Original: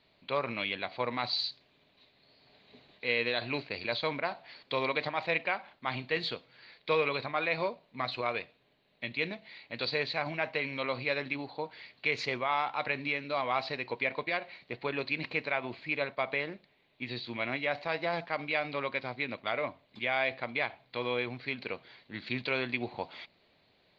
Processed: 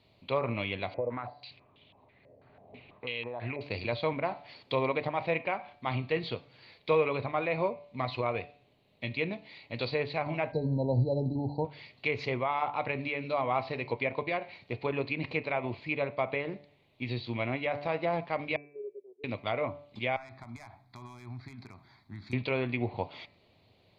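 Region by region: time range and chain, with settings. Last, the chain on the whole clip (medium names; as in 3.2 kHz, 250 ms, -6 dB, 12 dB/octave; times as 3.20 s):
0.94–3.61 s: compression 12:1, threshold -36 dBFS + step-sequenced low-pass 6.1 Hz 550–3200 Hz
10.52–11.65 s: brick-wall FIR band-stop 970–3900 Hz + tone controls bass +11 dB, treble -3 dB
18.56–19.24 s: gate -39 dBFS, range -7 dB + Butterworth band-pass 400 Hz, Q 7.6
20.16–22.33 s: hard clipper -25 dBFS + compression 5:1, threshold -40 dBFS + static phaser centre 1.2 kHz, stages 4
whole clip: fifteen-band graphic EQ 100 Hz +11 dB, 1.6 kHz -10 dB, 4 kHz -4 dB; low-pass that closes with the level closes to 2.3 kHz, closed at -30 dBFS; de-hum 144.9 Hz, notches 18; trim +3.5 dB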